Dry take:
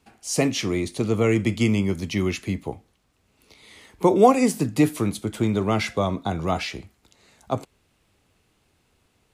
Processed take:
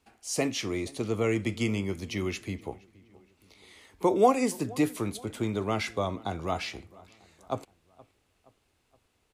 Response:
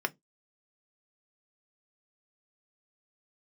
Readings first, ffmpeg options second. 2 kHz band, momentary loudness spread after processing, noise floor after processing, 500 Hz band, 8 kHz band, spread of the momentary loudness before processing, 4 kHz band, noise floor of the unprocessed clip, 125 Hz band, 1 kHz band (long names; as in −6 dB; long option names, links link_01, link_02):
−5.5 dB, 14 LU, −72 dBFS, −6.0 dB, −5.5 dB, 14 LU, −5.5 dB, −67 dBFS, −9.0 dB, −5.5 dB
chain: -filter_complex "[0:a]equalizer=frequency=160:width=1.3:gain=-6,asplit=2[link_01][link_02];[link_02]adelay=471,lowpass=frequency=2900:poles=1,volume=-22.5dB,asplit=2[link_03][link_04];[link_04]adelay=471,lowpass=frequency=2900:poles=1,volume=0.51,asplit=2[link_05][link_06];[link_06]adelay=471,lowpass=frequency=2900:poles=1,volume=0.51[link_07];[link_01][link_03][link_05][link_07]amix=inputs=4:normalize=0,volume=-5.5dB"